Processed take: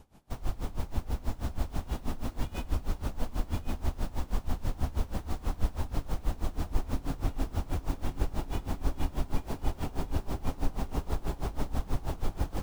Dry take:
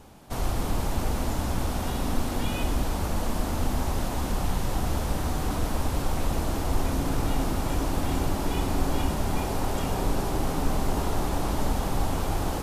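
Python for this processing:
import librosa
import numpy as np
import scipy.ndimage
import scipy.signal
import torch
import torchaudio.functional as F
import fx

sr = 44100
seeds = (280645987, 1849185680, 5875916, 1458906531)

y = fx.tracing_dist(x, sr, depth_ms=0.11)
y = fx.low_shelf(y, sr, hz=120.0, db=7.5)
y = y + 10.0 ** (-4.0 / 20.0) * np.pad(y, (int(1080 * sr / 1000.0), 0))[:len(y)]
y = y * 10.0 ** (-20 * (0.5 - 0.5 * np.cos(2.0 * np.pi * 6.2 * np.arange(len(y)) / sr)) / 20.0)
y = F.gain(torch.from_numpy(y), -6.5).numpy()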